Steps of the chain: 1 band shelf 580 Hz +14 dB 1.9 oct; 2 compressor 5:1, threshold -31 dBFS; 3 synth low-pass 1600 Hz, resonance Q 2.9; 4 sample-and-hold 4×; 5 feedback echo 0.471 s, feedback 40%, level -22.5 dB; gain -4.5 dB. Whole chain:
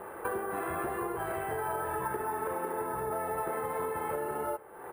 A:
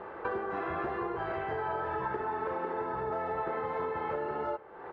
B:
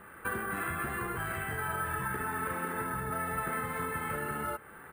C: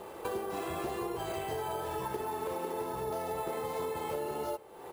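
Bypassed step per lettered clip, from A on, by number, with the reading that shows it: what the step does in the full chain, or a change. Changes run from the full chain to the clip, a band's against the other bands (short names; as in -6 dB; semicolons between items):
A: 4, distortion -13 dB; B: 1, 500 Hz band -9.5 dB; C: 3, 2 kHz band -5.5 dB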